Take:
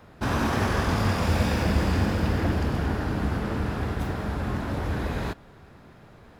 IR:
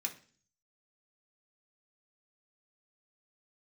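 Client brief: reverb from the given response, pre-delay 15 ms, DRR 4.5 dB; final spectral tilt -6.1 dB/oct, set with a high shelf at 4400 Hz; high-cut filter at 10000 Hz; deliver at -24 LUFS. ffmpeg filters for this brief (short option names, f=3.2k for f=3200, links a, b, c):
-filter_complex "[0:a]lowpass=10k,highshelf=f=4.4k:g=-5.5,asplit=2[a][b];[1:a]atrim=start_sample=2205,adelay=15[c];[b][c]afir=irnorm=-1:irlink=0,volume=-5dB[d];[a][d]amix=inputs=2:normalize=0,volume=2dB"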